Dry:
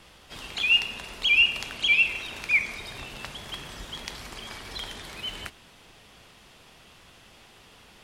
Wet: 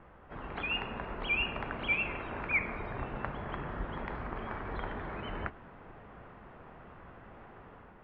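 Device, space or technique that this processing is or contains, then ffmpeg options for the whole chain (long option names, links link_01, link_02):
action camera in a waterproof case: -af "lowpass=frequency=1600:width=0.5412,lowpass=frequency=1600:width=1.3066,dynaudnorm=framelen=180:gausssize=5:maxgain=5dB" -ar 24000 -c:a aac -b:a 48k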